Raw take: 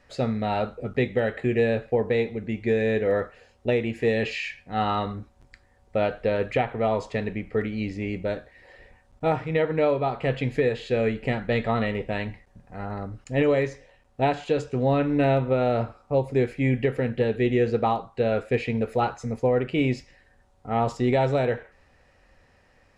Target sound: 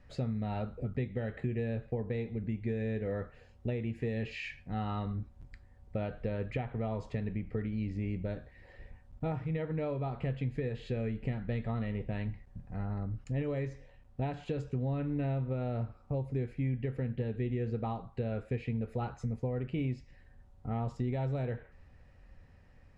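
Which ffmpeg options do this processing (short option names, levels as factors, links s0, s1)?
-af "bass=f=250:g=13,treble=f=4000:g=-4,acompressor=threshold=0.0501:ratio=3,volume=0.422"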